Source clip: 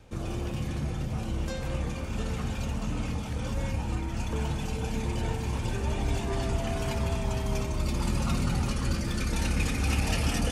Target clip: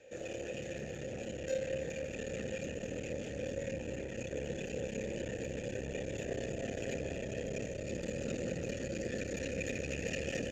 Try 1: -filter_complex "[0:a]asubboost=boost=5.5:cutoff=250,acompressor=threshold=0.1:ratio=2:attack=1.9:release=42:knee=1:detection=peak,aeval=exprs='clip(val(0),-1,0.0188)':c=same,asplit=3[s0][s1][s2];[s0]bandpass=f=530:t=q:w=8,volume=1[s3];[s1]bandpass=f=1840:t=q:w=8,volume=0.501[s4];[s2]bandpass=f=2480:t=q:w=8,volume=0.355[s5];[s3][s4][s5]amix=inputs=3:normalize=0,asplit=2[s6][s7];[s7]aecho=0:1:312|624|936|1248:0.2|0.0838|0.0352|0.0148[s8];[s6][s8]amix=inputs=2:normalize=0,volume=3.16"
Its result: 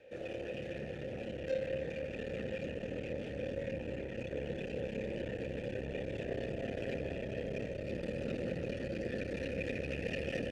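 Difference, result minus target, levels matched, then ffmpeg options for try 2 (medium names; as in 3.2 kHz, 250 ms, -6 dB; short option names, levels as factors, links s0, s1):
8 kHz band -16.0 dB
-filter_complex "[0:a]asubboost=boost=5.5:cutoff=250,acompressor=threshold=0.1:ratio=2:attack=1.9:release=42:knee=1:detection=peak,lowpass=f=6900:t=q:w=16,aeval=exprs='clip(val(0),-1,0.0188)':c=same,asplit=3[s0][s1][s2];[s0]bandpass=f=530:t=q:w=8,volume=1[s3];[s1]bandpass=f=1840:t=q:w=8,volume=0.501[s4];[s2]bandpass=f=2480:t=q:w=8,volume=0.355[s5];[s3][s4][s5]amix=inputs=3:normalize=0,asplit=2[s6][s7];[s7]aecho=0:1:312|624|936|1248:0.2|0.0838|0.0352|0.0148[s8];[s6][s8]amix=inputs=2:normalize=0,volume=3.16"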